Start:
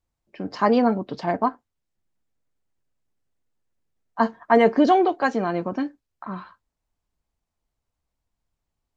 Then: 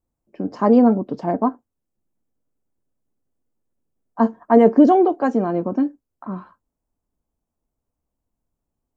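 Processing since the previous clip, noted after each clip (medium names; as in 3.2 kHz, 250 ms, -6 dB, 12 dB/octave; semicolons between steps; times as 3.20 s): graphic EQ 250/500/2000/4000 Hz +7/+3/-7/-12 dB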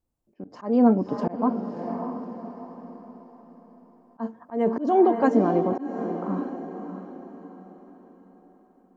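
peak limiter -7.5 dBFS, peak gain reduction 6 dB; echo that smears into a reverb 604 ms, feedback 42%, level -9 dB; slow attack 228 ms; trim -1.5 dB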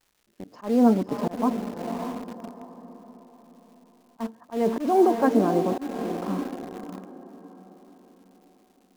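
crackle 360 per s -50 dBFS; in parallel at -9.5 dB: bit crusher 5-bit; on the sum: trim -3 dB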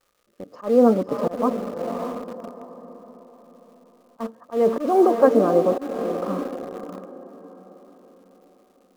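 small resonant body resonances 530/1200 Hz, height 13 dB, ringing for 25 ms; trim -1 dB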